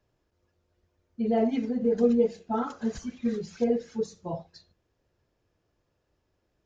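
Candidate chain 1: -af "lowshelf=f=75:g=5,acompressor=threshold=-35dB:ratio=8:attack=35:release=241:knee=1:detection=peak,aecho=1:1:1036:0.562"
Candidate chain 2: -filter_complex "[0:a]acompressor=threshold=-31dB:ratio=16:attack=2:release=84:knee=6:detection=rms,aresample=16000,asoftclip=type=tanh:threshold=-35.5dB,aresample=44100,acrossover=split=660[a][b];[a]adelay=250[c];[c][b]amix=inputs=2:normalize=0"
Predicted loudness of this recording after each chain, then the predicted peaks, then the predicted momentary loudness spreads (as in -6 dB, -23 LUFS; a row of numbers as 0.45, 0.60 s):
-38.0, -42.5 LUFS; -22.0, -32.5 dBFS; 10, 6 LU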